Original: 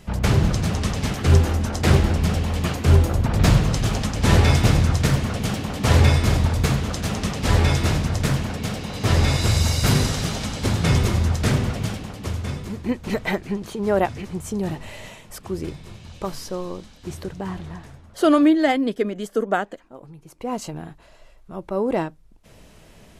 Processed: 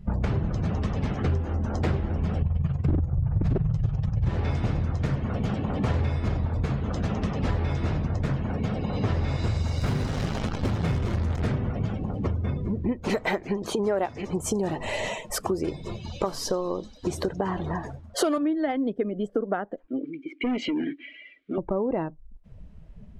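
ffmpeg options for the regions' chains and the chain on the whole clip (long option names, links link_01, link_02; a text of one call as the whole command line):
ffmpeg -i in.wav -filter_complex "[0:a]asettb=1/sr,asplit=3[link_01][link_02][link_03];[link_01]atrim=end=2.424[link_04];[link_02]atrim=start=2.42:end=4.29,asetpts=PTS-STARTPTS,afade=type=in:duration=0.004:curve=qsin,afade=type=out:start_time=1.866:duration=0.004:curve=qsin,lowshelf=frequency=190:width_type=q:width=3:gain=10.5,tremolo=f=21:d=0.621,aeval=exprs='0.944*(abs(mod(val(0)/0.944+3,4)-2)-1)':channel_layout=same[link_05];[link_03]atrim=start=4.286[link_06];[link_04][link_05]acrossfade=duration=0.004:curve1=hsin:curve2=qsin[link_07];[link_07][link_06]acrossfade=duration=0.004:curve1=qsin:curve2=hsin,asettb=1/sr,asplit=3[link_08][link_09][link_10];[link_08]atrim=end=9.784[link_11];[link_09]atrim=start=9.78:end=11.47,asetpts=PTS-STARTPTS,afade=type=in:duration=0.004:curve=qsin,afade=type=out:start_time=1.686:duration=0.004:curve=qsin,highshelf=frequency=12000:gain=-3,acrusher=bits=5:dc=4:mix=0:aa=0.000001[link_12];[link_10]atrim=start=11.466[link_13];[link_11][link_12]acrossfade=duration=0.004:curve1=hsin:curve2=qsin[link_14];[link_14][link_13]acrossfade=duration=0.004:curve1=qsin:curve2=hsin,asettb=1/sr,asplit=3[link_15][link_16][link_17];[link_15]atrim=end=13.024[link_18];[link_16]atrim=start=13.02:end=18.38,asetpts=PTS-STARTPTS,afade=type=in:duration=0.004:curve=qsin,afade=type=out:start_time=5.356:duration=0.004:curve=qsin,acontrast=84,bass=frequency=250:gain=-11,treble=frequency=4000:gain=9[link_19];[link_17]atrim=start=18.376[link_20];[link_18][link_19]acrossfade=duration=0.004:curve1=hsin:curve2=qsin[link_21];[link_21][link_20]acrossfade=duration=0.004:curve1=qsin:curve2=hsin,asettb=1/sr,asplit=3[link_22][link_23][link_24];[link_22]atrim=end=19.884[link_25];[link_23]atrim=start=19.88:end=21.58,asetpts=PTS-STARTPTS,afade=type=in:duration=0.004:curve=qsin,afade=type=out:start_time=1.696:duration=0.004:curve=qsin,asplit=3[link_26][link_27][link_28];[link_26]bandpass=frequency=270:width_type=q:width=8,volume=0dB[link_29];[link_27]bandpass=frequency=2290:width_type=q:width=8,volume=-6dB[link_30];[link_28]bandpass=frequency=3010:width_type=q:width=8,volume=-9dB[link_31];[link_29][link_30][link_31]amix=inputs=3:normalize=0,equalizer=frequency=180:width_type=o:width=1.1:gain=-11,asplit=2[link_32][link_33];[link_33]highpass=frequency=720:poles=1,volume=36dB,asoftclip=type=tanh:threshold=-22dB[link_34];[link_32][link_34]amix=inputs=2:normalize=0,lowpass=frequency=7500:poles=1,volume=-6dB[link_35];[link_24]atrim=start=21.576[link_36];[link_25][link_35]acrossfade=duration=0.004:curve1=hsin:curve2=qsin[link_37];[link_37][link_36]acrossfade=duration=0.004:curve1=qsin:curve2=hsin,afftdn=noise_reduction=20:noise_floor=-37,lowpass=frequency=1400:poles=1,acompressor=threshold=-32dB:ratio=6,volume=8dB" out.wav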